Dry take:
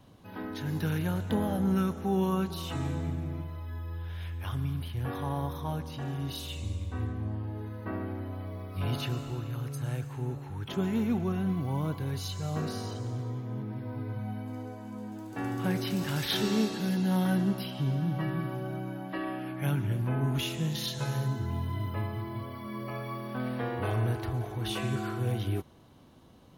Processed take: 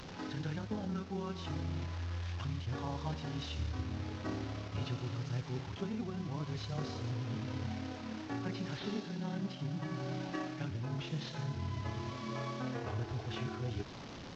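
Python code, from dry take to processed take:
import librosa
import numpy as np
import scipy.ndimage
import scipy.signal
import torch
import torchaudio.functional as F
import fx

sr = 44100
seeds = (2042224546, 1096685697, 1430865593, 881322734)

y = fx.delta_mod(x, sr, bps=32000, step_db=-38.5)
y = fx.rider(y, sr, range_db=4, speed_s=0.5)
y = fx.stretch_grains(y, sr, factor=0.54, grain_ms=58.0)
y = y * librosa.db_to_amplitude(-5.5)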